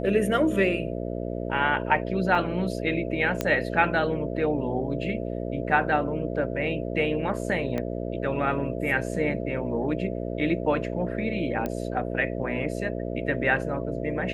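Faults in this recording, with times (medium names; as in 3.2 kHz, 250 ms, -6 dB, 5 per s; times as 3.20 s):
buzz 60 Hz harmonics 11 -31 dBFS
2.35 s: dropout 3.7 ms
3.41 s: pop -11 dBFS
7.78 s: pop -17 dBFS
11.66 s: pop -16 dBFS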